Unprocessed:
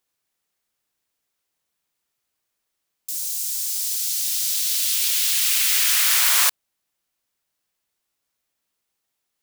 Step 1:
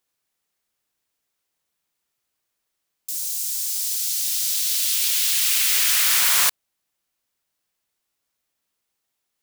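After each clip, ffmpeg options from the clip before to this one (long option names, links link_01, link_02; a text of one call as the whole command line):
ffmpeg -i in.wav -af "aeval=exprs='0.299*(abs(mod(val(0)/0.299+3,4)-2)-1)':channel_layout=same" out.wav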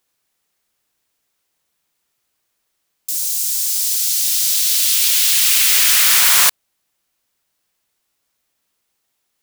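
ffmpeg -i in.wav -af "acontrast=77" out.wav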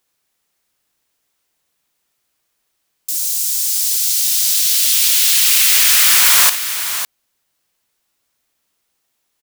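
ffmpeg -i in.wav -af "aecho=1:1:59|555:0.224|0.316,volume=1dB" out.wav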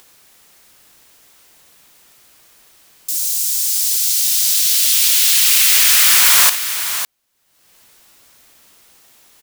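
ffmpeg -i in.wav -af "acompressor=mode=upward:threshold=-32dB:ratio=2.5" out.wav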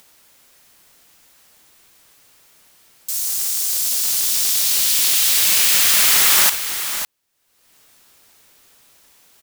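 ffmpeg -i in.wav -af "aeval=exprs='val(0)*sgn(sin(2*PI*200*n/s))':channel_layout=same,volume=-3dB" out.wav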